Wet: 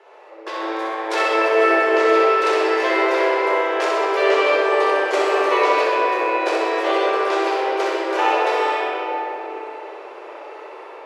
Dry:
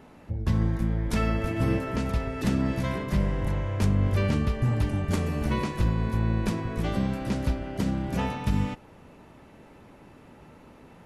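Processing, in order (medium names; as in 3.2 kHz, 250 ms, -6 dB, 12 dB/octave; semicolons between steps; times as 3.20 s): steep high-pass 370 Hz 72 dB/octave; treble shelf 7.9 kHz -11 dB; level rider gain up to 6.5 dB; distance through air 51 m; on a send: flutter echo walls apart 10.9 m, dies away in 0.84 s; on the sum: simulated room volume 220 m³, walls hard, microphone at 0.85 m; trim +4 dB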